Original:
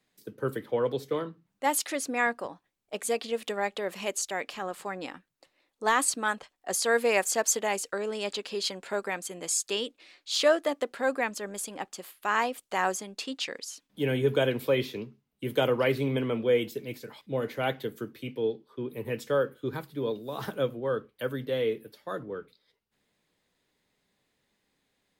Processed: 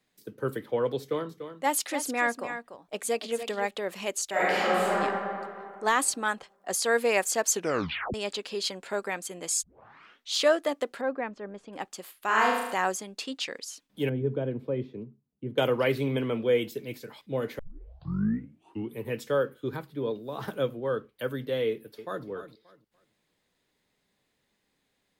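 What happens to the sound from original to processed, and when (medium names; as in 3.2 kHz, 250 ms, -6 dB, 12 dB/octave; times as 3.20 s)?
1.00–3.71 s: delay 292 ms -10 dB
4.30–4.92 s: reverb throw, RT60 2.3 s, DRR -10.5 dB
7.51 s: tape stop 0.63 s
9.63 s: tape start 0.71 s
11.01–11.73 s: tape spacing loss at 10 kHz 39 dB
12.26–12.74 s: flutter echo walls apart 6.3 m, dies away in 0.93 s
14.09–15.58 s: band-pass filter 150 Hz, Q 0.56
17.59 s: tape start 1.41 s
19.76–20.48 s: treble shelf 3.7 kHz -7.5 dB
21.69–22.26 s: echo throw 290 ms, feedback 25%, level -11.5 dB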